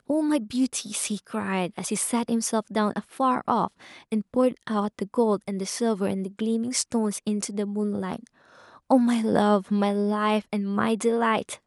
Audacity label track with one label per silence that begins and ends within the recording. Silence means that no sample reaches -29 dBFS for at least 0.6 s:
8.160000	8.900000	silence